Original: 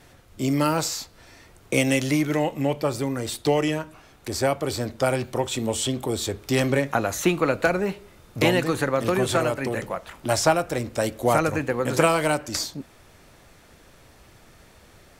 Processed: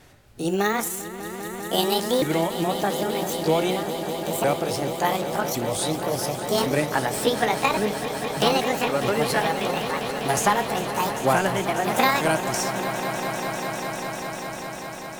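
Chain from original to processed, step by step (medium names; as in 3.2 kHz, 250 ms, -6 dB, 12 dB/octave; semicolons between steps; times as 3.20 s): sawtooth pitch modulation +9.5 st, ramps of 1110 ms; echo with a slow build-up 199 ms, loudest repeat 5, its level -13 dB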